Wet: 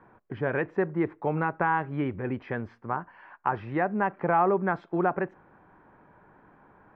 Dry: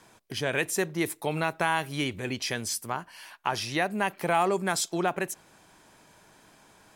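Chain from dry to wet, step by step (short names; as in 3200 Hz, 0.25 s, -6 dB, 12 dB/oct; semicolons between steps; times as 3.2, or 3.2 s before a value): LPF 1600 Hz 24 dB/oct; notch 650 Hz, Q 12; gain +2.5 dB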